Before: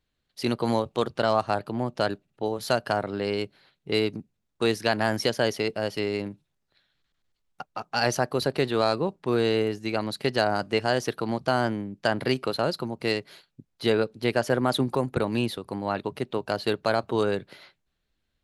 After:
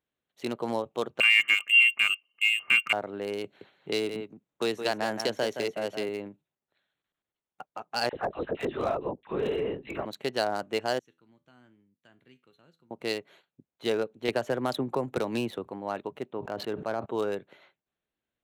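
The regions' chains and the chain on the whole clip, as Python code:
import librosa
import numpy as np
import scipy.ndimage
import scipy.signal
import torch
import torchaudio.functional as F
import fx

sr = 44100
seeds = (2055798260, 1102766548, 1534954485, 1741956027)

y = fx.chain(x, sr, fx.small_body(hz=(230.0, 850.0, 1800.0), ring_ms=55, db=17),
    fx.freq_invert(carrier_hz=3000), at=(1.2, 2.93))
y = fx.chain(y, sr, fx.echo_single(ms=169, db=-8.5),
    fx.band_squash(depth_pct=40), at=(3.44, 6.09))
y = fx.chain(y, sr, fx.dispersion(late='lows', ms=54.0, hz=1100.0),
    fx.lpc_vocoder(seeds[0], excitation='whisper', order=10), at=(8.09, 10.06))
y = fx.chain(y, sr, fx.tone_stack(knobs='6-0-2'),
    fx.comb_fb(f0_hz=83.0, decay_s=0.27, harmonics='all', damping=0.0, mix_pct=60), at=(10.99, 12.91))
y = fx.chain(y, sr, fx.highpass(hz=43.0, slope=12),
    fx.low_shelf(hz=71.0, db=11.5),
    fx.band_squash(depth_pct=100), at=(14.28, 15.68))
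y = fx.chain(y, sr, fx.lowpass(hz=1200.0, slope=6),
    fx.peak_eq(hz=540.0, db=-3.5, octaves=1.1),
    fx.sustainer(db_per_s=40.0), at=(16.3, 17.06))
y = fx.wiener(y, sr, points=9)
y = fx.highpass(y, sr, hz=650.0, slope=6)
y = fx.peak_eq(y, sr, hz=1600.0, db=-7.0, octaves=2.1)
y = F.gain(torch.from_numpy(y), 2.0).numpy()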